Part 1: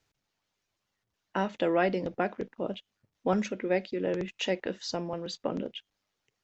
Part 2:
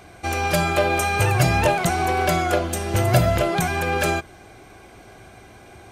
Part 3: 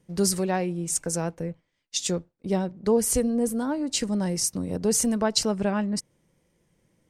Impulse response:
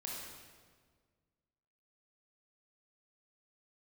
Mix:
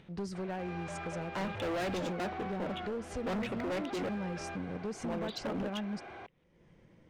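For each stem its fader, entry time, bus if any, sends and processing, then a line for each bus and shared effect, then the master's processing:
+0.5 dB, 0.00 s, muted 4.09–5.04 s, no bus, no send, Chebyshev band-pass 160–3700 Hz, order 5
-16.0 dB, 0.35 s, bus A, no send, hard clipper -21 dBFS, distortion -8 dB; overdrive pedal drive 30 dB, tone 2.2 kHz, clips at -21 dBFS
-7.5 dB, 0.00 s, bus A, no send, none
bus A: 0.0 dB, low-pass 3 kHz 12 dB/octave; compression 3:1, threshold -34 dBFS, peak gain reduction 8 dB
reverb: none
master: upward compressor, threshold -47 dBFS; hard clipper -32 dBFS, distortion -5 dB

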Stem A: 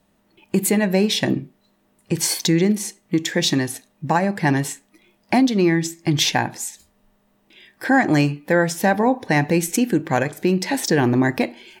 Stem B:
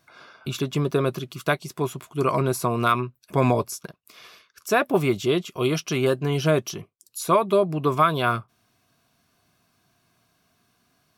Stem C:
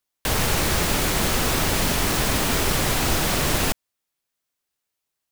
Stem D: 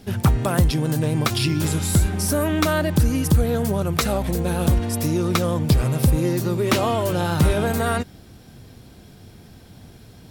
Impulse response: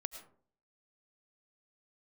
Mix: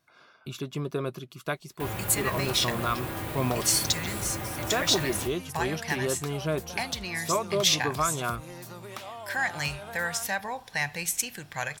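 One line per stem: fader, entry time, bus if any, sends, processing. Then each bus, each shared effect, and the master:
-1.5 dB, 1.45 s, no send, amplifier tone stack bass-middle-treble 10-0-10
-8.5 dB, 0.00 s, no send, none
-1.5 dB, 1.55 s, no send, high-pass 57 Hz; peaking EQ 5.9 kHz -14.5 dB 1.6 oct; feedback comb 110 Hz, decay 0.26 s, harmonics odd, mix 80%
-6.0 dB, 2.25 s, no send, resonant low shelf 530 Hz -9.5 dB, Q 1.5; compression 4:1, threshold -34 dBFS, peak gain reduction 15 dB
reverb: none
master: none

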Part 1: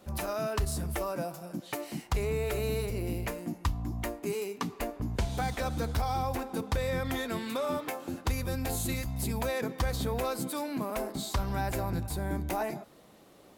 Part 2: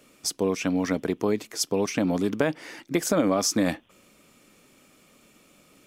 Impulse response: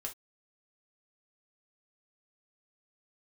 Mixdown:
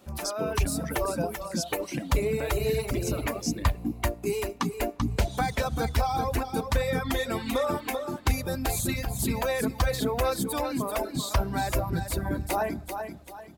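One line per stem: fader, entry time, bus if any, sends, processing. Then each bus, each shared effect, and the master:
-0.5 dB, 0.00 s, no send, echo send -5.5 dB, level rider gain up to 6 dB
-1.0 dB, 0.00 s, no send, no echo send, gate -48 dBFS, range -7 dB; compression 4:1, threshold -30 dBFS, peak gain reduction 11 dB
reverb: none
echo: feedback delay 388 ms, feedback 40%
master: reverb removal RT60 1.8 s

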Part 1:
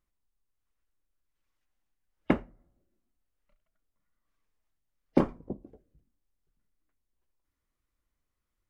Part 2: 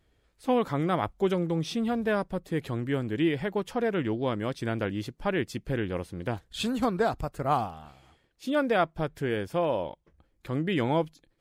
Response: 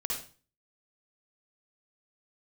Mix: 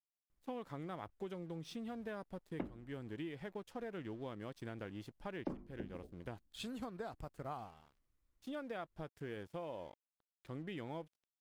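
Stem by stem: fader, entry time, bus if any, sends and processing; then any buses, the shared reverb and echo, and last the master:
-5.0 dB, 0.30 s, no send, bass shelf 420 Hz +8.5 dB; hum notches 50/100/150/200/250/300/350 Hz
-12.5 dB, 0.00 s, no send, crossover distortion -48 dBFS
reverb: none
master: compression 5:1, threshold -41 dBFS, peak gain reduction 20.5 dB

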